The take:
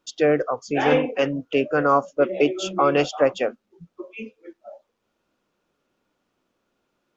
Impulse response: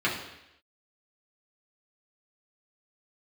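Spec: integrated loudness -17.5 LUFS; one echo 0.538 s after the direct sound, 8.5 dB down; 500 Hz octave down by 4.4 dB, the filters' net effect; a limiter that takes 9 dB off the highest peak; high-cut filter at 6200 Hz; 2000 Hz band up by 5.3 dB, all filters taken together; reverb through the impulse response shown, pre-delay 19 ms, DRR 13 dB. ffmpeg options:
-filter_complex "[0:a]lowpass=6.2k,equalizer=f=500:t=o:g=-5.5,equalizer=f=2k:t=o:g=7.5,alimiter=limit=-14dB:level=0:latency=1,aecho=1:1:538:0.376,asplit=2[a][b];[1:a]atrim=start_sample=2205,adelay=19[c];[b][c]afir=irnorm=-1:irlink=0,volume=-25.5dB[d];[a][d]amix=inputs=2:normalize=0,volume=9dB"

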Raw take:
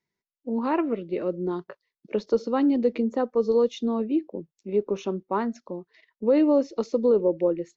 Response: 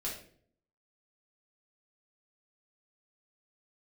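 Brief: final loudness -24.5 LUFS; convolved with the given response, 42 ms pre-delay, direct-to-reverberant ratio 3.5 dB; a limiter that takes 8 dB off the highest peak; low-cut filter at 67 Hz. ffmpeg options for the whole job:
-filter_complex "[0:a]highpass=67,alimiter=limit=-19.5dB:level=0:latency=1,asplit=2[a][b];[1:a]atrim=start_sample=2205,adelay=42[c];[b][c]afir=irnorm=-1:irlink=0,volume=-5dB[d];[a][d]amix=inputs=2:normalize=0,volume=3dB"

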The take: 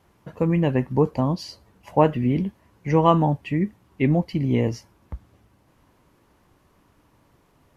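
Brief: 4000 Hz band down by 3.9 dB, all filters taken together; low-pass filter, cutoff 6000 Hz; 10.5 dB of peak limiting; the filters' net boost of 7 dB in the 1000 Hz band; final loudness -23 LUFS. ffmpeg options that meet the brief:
-af "lowpass=6k,equalizer=f=1k:t=o:g=8.5,equalizer=f=4k:t=o:g=-6,volume=0.5dB,alimiter=limit=-9.5dB:level=0:latency=1"

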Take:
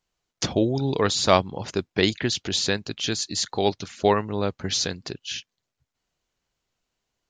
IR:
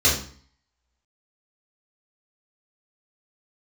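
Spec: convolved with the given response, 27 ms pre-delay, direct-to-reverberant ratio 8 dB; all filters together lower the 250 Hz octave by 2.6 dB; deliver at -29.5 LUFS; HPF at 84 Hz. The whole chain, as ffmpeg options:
-filter_complex "[0:a]highpass=84,equalizer=f=250:t=o:g=-3.5,asplit=2[a][b];[1:a]atrim=start_sample=2205,adelay=27[c];[b][c]afir=irnorm=-1:irlink=0,volume=-25.5dB[d];[a][d]amix=inputs=2:normalize=0,volume=-5dB"

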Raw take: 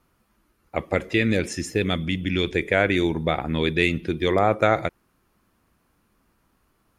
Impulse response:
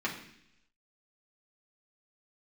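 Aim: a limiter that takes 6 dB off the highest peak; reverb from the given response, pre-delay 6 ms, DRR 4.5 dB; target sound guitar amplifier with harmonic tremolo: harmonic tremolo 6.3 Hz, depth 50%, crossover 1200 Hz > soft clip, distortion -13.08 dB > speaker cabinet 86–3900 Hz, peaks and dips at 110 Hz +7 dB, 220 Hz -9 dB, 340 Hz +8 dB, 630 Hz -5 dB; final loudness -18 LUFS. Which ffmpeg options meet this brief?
-filter_complex "[0:a]alimiter=limit=-11.5dB:level=0:latency=1,asplit=2[a][b];[1:a]atrim=start_sample=2205,adelay=6[c];[b][c]afir=irnorm=-1:irlink=0,volume=-11.5dB[d];[a][d]amix=inputs=2:normalize=0,acrossover=split=1200[e][f];[e]aeval=exprs='val(0)*(1-0.5/2+0.5/2*cos(2*PI*6.3*n/s))':c=same[g];[f]aeval=exprs='val(0)*(1-0.5/2-0.5/2*cos(2*PI*6.3*n/s))':c=same[h];[g][h]amix=inputs=2:normalize=0,asoftclip=threshold=-19.5dB,highpass=86,equalizer=f=110:t=q:w=4:g=7,equalizer=f=220:t=q:w=4:g=-9,equalizer=f=340:t=q:w=4:g=8,equalizer=f=630:t=q:w=4:g=-5,lowpass=f=3.9k:w=0.5412,lowpass=f=3.9k:w=1.3066,volume=8dB"

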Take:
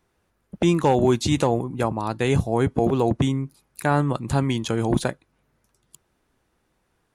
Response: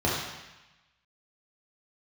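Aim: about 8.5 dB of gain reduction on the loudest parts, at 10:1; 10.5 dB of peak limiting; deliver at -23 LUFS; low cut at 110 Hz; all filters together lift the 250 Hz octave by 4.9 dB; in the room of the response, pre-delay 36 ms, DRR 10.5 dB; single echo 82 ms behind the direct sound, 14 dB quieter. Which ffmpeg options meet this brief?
-filter_complex "[0:a]highpass=110,equalizer=f=250:t=o:g=6.5,acompressor=threshold=-20dB:ratio=10,alimiter=limit=-18.5dB:level=0:latency=1,aecho=1:1:82:0.2,asplit=2[a][b];[1:a]atrim=start_sample=2205,adelay=36[c];[b][c]afir=irnorm=-1:irlink=0,volume=-24dB[d];[a][d]amix=inputs=2:normalize=0,volume=5dB"

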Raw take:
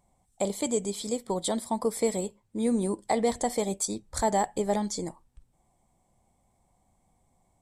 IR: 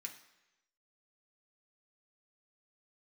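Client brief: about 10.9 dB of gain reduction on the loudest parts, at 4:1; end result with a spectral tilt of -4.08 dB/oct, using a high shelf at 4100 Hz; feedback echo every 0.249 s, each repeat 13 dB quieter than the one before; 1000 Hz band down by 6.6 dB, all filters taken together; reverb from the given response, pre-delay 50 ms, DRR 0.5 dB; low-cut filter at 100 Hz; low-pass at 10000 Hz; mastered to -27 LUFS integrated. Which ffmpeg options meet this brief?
-filter_complex "[0:a]highpass=100,lowpass=10k,equalizer=f=1k:t=o:g=-9,highshelf=f=4.1k:g=-6,acompressor=threshold=-36dB:ratio=4,aecho=1:1:249|498|747:0.224|0.0493|0.0108,asplit=2[a][b];[1:a]atrim=start_sample=2205,adelay=50[c];[b][c]afir=irnorm=-1:irlink=0,volume=3.5dB[d];[a][d]amix=inputs=2:normalize=0,volume=10dB"

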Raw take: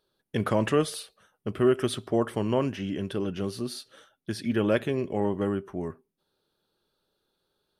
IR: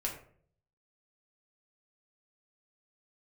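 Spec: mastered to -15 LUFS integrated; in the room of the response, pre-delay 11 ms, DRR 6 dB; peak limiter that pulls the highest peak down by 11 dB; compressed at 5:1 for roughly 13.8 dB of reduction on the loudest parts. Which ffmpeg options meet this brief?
-filter_complex "[0:a]acompressor=threshold=-34dB:ratio=5,alimiter=level_in=9.5dB:limit=-24dB:level=0:latency=1,volume=-9.5dB,asplit=2[a][b];[1:a]atrim=start_sample=2205,adelay=11[c];[b][c]afir=irnorm=-1:irlink=0,volume=-8.5dB[d];[a][d]amix=inputs=2:normalize=0,volume=28dB"

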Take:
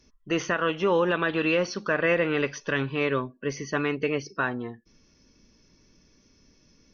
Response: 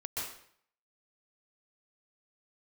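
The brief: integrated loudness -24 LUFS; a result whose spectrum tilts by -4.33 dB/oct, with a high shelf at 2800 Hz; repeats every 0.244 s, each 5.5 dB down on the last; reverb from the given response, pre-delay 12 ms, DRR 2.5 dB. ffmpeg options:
-filter_complex "[0:a]highshelf=f=2.8k:g=-4.5,aecho=1:1:244|488|732|976|1220|1464|1708:0.531|0.281|0.149|0.079|0.0419|0.0222|0.0118,asplit=2[a][b];[1:a]atrim=start_sample=2205,adelay=12[c];[b][c]afir=irnorm=-1:irlink=0,volume=-5dB[d];[a][d]amix=inputs=2:normalize=0"

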